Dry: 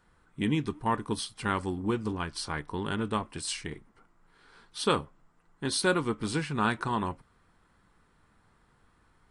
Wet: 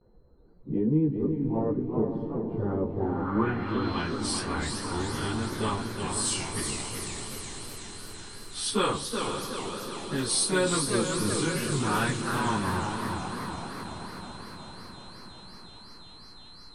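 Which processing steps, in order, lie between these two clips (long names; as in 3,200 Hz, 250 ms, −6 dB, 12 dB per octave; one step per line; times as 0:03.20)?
in parallel at −1 dB: downward compressor, threshold −40 dBFS, peak gain reduction 18.5 dB
on the sum: time stretch by phase vocoder 1.8×
noise gate with hold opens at −54 dBFS
on a send at −21 dB: convolution reverb RT60 2.9 s, pre-delay 3 ms
on the sum: steady tone 4,100 Hz −49 dBFS
low-shelf EQ 100 Hz +6 dB
feedback delay with all-pass diffusion 525 ms, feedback 62%, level −8 dB
low-pass filter sweep 490 Hz → 9,600 Hz, 0:02.89–0:04.32
feedback echo with a swinging delay time 379 ms, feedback 57%, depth 199 cents, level −6 dB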